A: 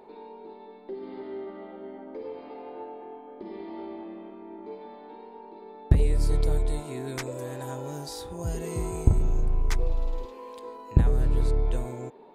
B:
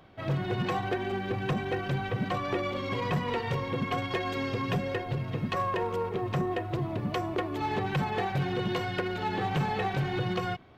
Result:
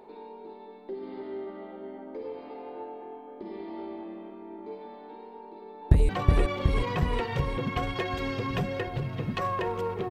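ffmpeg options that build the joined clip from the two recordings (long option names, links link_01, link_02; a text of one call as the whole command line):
ffmpeg -i cue0.wav -i cue1.wav -filter_complex "[0:a]apad=whole_dur=10.1,atrim=end=10.1,atrim=end=6.092[link_01];[1:a]atrim=start=2.238:end=6.25[link_02];[link_01][link_02]acrossfade=duration=0.004:curve1=hsin:curve2=hsin,asplit=2[link_03][link_04];[link_04]afade=type=in:start_time=5.44:duration=0.01,afade=type=out:start_time=6.09:duration=0.01,aecho=0:1:370|740|1110|1480|1850|2220|2590|2960|3330|3700|4070:0.794328|0.516313|0.335604|0.218142|0.141793|0.0921652|0.0599074|0.0389398|0.0253109|0.0164521|0.0106938[link_05];[link_03][link_05]amix=inputs=2:normalize=0" out.wav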